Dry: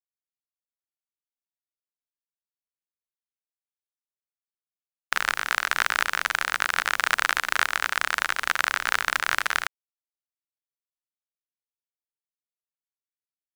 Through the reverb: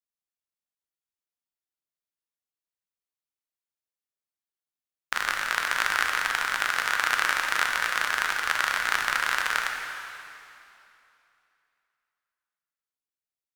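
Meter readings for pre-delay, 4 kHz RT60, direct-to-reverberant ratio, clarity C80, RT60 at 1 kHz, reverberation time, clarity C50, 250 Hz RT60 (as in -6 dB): 7 ms, 2.6 s, 2.0 dB, 4.0 dB, 2.8 s, 2.8 s, 3.0 dB, 2.9 s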